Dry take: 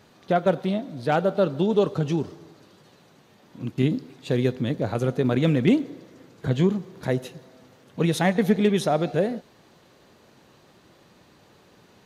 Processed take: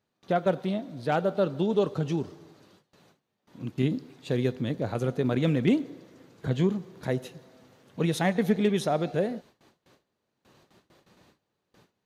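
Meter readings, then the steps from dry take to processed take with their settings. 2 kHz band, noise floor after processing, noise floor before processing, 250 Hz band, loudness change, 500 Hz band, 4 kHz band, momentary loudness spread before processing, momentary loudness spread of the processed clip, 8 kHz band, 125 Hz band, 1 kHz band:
−4.0 dB, −81 dBFS, −56 dBFS, −4.0 dB, −4.0 dB, −4.0 dB, −4.0 dB, 12 LU, 12 LU, −4.0 dB, −4.0 dB, −4.0 dB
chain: noise gate with hold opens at −44 dBFS
level −4 dB

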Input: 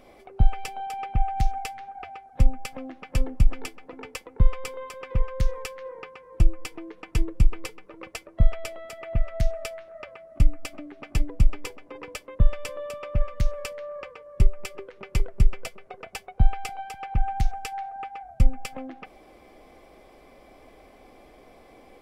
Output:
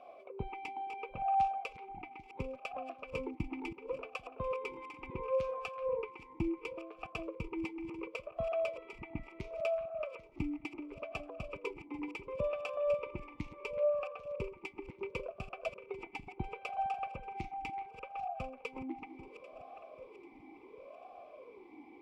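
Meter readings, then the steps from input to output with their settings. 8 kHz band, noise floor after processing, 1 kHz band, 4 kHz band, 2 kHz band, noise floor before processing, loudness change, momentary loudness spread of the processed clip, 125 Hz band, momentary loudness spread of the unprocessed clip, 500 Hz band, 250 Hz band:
below −20 dB, −57 dBFS, −3.5 dB, −12.0 dB, −5.0 dB, −53 dBFS, −10.0 dB, 17 LU, −21.0 dB, 14 LU, +0.5 dB, −5.5 dB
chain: feedback delay that plays each chunk backwards 396 ms, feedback 64%, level −13.5 dB
formant filter swept between two vowels a-u 0.71 Hz
level +7.5 dB

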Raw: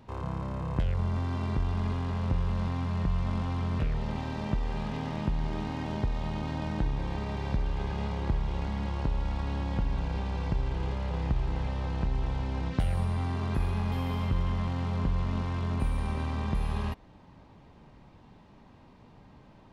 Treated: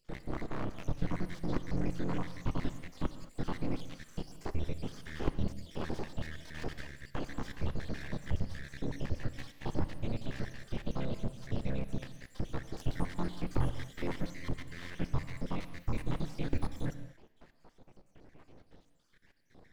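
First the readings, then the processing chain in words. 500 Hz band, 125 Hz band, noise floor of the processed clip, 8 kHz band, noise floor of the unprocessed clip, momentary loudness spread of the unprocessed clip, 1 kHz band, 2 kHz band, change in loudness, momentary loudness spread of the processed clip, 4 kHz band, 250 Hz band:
−3.0 dB, −9.0 dB, −66 dBFS, can't be measured, −55 dBFS, 4 LU, −8.5 dB, −3.0 dB, −7.5 dB, 7 LU, −4.0 dB, −4.5 dB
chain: time-frequency cells dropped at random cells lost 68%
full-wave rectification
reverb whose tail is shaped and stops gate 250 ms flat, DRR 11 dB
level +1.5 dB

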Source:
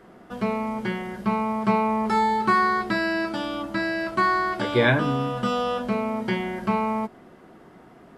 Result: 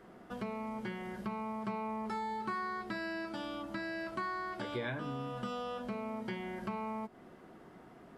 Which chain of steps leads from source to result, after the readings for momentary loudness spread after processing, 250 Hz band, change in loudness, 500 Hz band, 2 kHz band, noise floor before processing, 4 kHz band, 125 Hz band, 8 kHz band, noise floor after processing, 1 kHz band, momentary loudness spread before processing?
10 LU, −14.5 dB, −15.5 dB, −15.0 dB, −15.5 dB, −50 dBFS, −15.0 dB, −15.5 dB, can't be measured, −56 dBFS, −15.5 dB, 8 LU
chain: downward compressor 3 to 1, threshold −33 dBFS, peak gain reduction 13.5 dB
level −6 dB

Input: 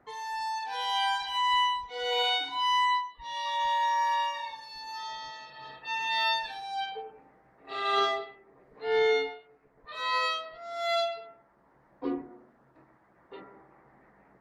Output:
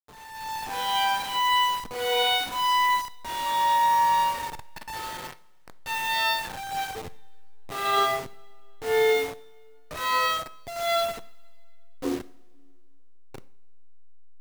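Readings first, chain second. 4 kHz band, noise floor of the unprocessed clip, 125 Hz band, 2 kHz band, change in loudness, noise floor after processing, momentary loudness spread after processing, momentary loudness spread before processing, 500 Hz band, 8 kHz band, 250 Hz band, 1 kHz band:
+2.5 dB, −64 dBFS, can't be measured, +3.5 dB, +4.0 dB, −46 dBFS, 17 LU, 16 LU, +3.5 dB, +11.0 dB, +3.5 dB, +4.5 dB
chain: hold until the input has moved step −34 dBFS
automatic gain control gain up to 13 dB
coupled-rooms reverb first 0.52 s, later 2.5 s, from −18 dB, DRR 14 dB
level −9 dB

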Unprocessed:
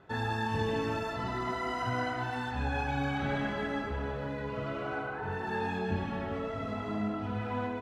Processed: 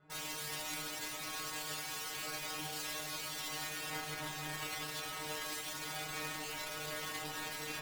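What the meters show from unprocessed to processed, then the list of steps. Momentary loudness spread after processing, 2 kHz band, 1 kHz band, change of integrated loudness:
1 LU, −5.0 dB, −10.5 dB, −6.0 dB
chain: wrap-around overflow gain 34.5 dB
stiff-string resonator 150 Hz, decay 0.46 s, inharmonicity 0.002
harmonic generator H 3 −12 dB, 5 −25 dB, 7 −30 dB, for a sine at −38.5 dBFS
level +17 dB

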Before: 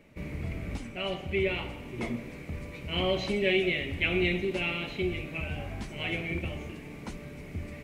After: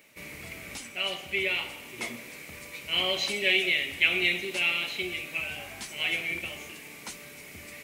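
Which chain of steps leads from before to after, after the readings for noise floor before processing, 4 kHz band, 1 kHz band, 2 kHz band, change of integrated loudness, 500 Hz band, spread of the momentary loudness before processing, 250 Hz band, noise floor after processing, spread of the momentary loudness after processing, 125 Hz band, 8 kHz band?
−44 dBFS, +7.5 dB, −0.5 dB, +5.5 dB, +4.0 dB, −5.5 dB, 14 LU, −8.0 dB, −46 dBFS, 18 LU, −13.5 dB, can't be measured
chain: spectral tilt +4.5 dB per octave

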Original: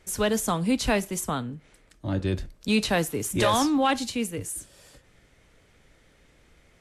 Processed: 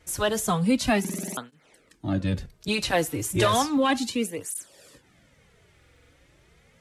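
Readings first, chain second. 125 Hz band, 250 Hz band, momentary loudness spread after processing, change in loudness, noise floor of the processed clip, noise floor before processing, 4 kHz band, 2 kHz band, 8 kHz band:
+1.0 dB, 0.0 dB, 12 LU, 0.0 dB, −61 dBFS, −61 dBFS, +0.5 dB, +1.0 dB, 0.0 dB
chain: buffer that repeats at 0:01.00/0:05.73, samples 2,048, times 7
through-zero flanger with one copy inverted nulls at 0.33 Hz, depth 5.2 ms
level +3.5 dB

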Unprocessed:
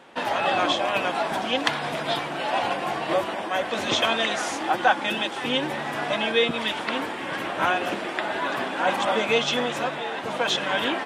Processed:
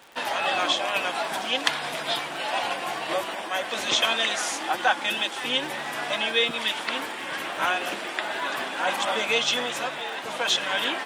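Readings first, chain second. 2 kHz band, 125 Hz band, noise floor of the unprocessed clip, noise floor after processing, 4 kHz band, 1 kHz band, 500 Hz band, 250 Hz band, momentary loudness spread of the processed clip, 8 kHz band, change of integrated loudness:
0.0 dB, −9.0 dB, −32 dBFS, −34 dBFS, +2.0 dB, −3.0 dB, −4.5 dB, −7.0 dB, 7 LU, +4.5 dB, −1.0 dB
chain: spectral tilt +2.5 dB per octave
surface crackle 67 per second −33 dBFS
level −2.5 dB

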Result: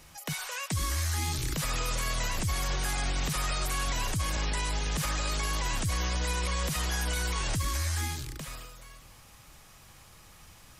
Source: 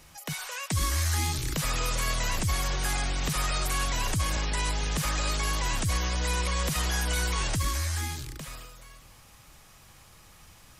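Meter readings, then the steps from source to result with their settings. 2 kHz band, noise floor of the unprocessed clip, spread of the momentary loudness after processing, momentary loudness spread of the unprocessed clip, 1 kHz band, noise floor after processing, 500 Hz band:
−2.0 dB, −54 dBFS, 6 LU, 7 LU, −2.5 dB, −54 dBFS, −2.0 dB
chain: brickwall limiter −21.5 dBFS, peak gain reduction 4 dB

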